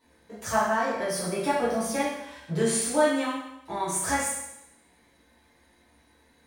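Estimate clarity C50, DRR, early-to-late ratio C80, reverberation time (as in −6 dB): 1.0 dB, −10.5 dB, 4.0 dB, 0.85 s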